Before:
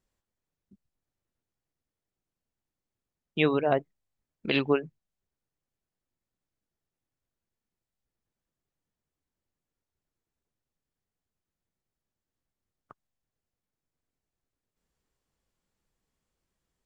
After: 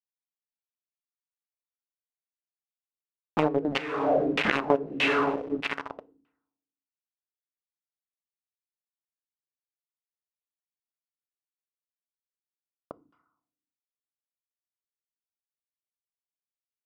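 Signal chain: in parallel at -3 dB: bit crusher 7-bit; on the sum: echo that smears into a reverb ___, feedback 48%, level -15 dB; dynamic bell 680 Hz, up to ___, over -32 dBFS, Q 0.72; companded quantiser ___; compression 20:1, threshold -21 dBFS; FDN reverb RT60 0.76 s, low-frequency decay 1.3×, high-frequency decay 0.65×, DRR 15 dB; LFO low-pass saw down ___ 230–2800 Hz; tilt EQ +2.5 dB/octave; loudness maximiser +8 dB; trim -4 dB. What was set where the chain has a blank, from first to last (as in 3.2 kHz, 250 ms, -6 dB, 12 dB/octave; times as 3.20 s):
478 ms, +3 dB, 2-bit, 1.6 Hz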